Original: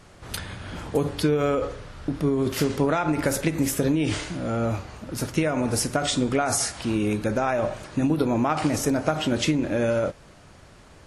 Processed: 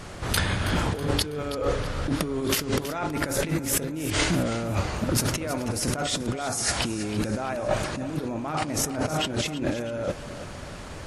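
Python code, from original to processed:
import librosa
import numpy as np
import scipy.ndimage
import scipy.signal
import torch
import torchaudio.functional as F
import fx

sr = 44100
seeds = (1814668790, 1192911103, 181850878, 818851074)

y = fx.tilt_eq(x, sr, slope=1.5, at=(2.08, 2.58))
y = fx.over_compress(y, sr, threshold_db=-32.0, ratio=-1.0)
y = fx.echo_feedback(y, sr, ms=324, feedback_pct=46, wet_db=-13.0)
y = y * 10.0 ** (4.0 / 20.0)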